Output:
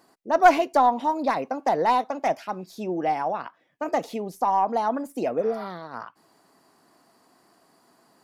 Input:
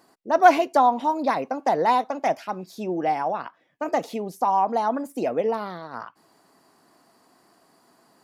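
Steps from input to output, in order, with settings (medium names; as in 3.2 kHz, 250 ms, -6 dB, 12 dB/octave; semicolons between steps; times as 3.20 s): tracing distortion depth 0.038 ms; spectral replace 5.41–5.62 s, 720–4300 Hz both; trim -1 dB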